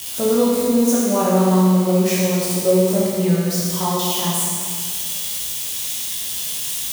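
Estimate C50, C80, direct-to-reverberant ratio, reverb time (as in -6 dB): -2.0 dB, 0.0 dB, -7.0 dB, 2.0 s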